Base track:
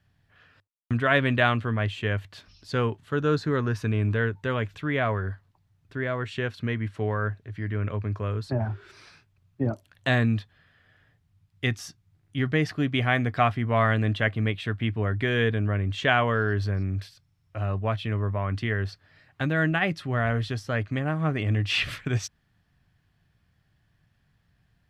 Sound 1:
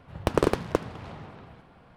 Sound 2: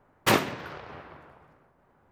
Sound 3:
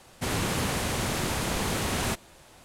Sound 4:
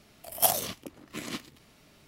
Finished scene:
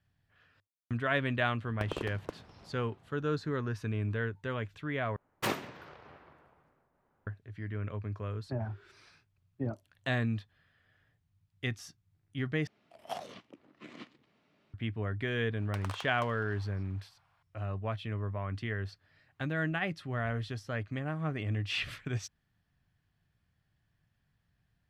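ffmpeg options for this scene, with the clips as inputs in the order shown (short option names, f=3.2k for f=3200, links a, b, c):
-filter_complex "[1:a]asplit=2[a][b];[0:a]volume=-8.5dB[c];[4:a]highpass=140,lowpass=2.9k[d];[b]highpass=f=810:w=0.5412,highpass=f=810:w=1.3066[e];[c]asplit=3[f][g][h];[f]atrim=end=5.164[i];[2:a]atrim=end=2.11,asetpts=PTS-STARTPTS,volume=-10.5dB[j];[g]atrim=start=7.266:end=12.674[k];[d]atrim=end=2.07,asetpts=PTS-STARTPTS,volume=-10dB[l];[h]atrim=start=14.736[m];[a]atrim=end=1.96,asetpts=PTS-STARTPTS,volume=-15.5dB,afade=t=in:d=0.004:c=hsin,afade=t=out:st=1.956:d=0.004:c=hsin,adelay=1540[n];[e]atrim=end=1.96,asetpts=PTS-STARTPTS,volume=-11.5dB,afade=t=in:d=0.004:c=hsin,afade=t=out:st=1.956:d=0.004:c=hsin,adelay=15470[o];[i][j]acrossfade=d=0.004:c1=hsin:c2=hsin[p];[p][k]acrossfade=d=0.004:c1=hsin:c2=hsin[q];[q][l]acrossfade=d=0.004:c1=hsin:c2=hsin[r];[r][m]acrossfade=d=0.004:c1=hsin:c2=hsin[s];[s][n][o]amix=inputs=3:normalize=0"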